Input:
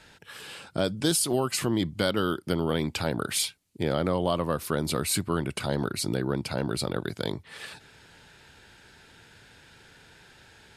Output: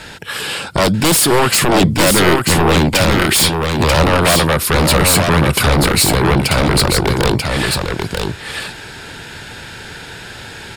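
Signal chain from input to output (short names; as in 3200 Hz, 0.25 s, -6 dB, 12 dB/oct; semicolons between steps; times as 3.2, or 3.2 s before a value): sine folder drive 14 dB, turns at -11 dBFS; notch 6100 Hz, Q 15; echo 0.939 s -4 dB; gain +2.5 dB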